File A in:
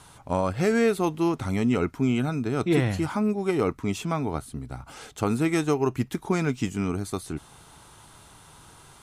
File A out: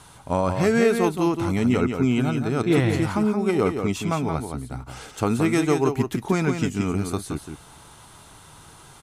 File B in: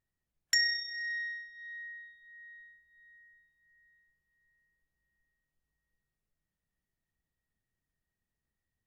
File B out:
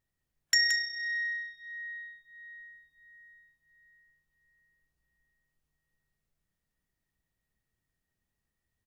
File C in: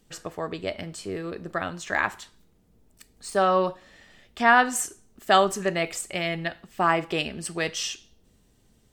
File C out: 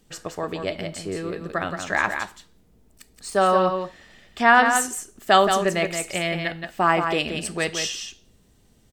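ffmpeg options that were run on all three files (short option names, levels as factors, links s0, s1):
-af "aecho=1:1:173:0.473,volume=1.33"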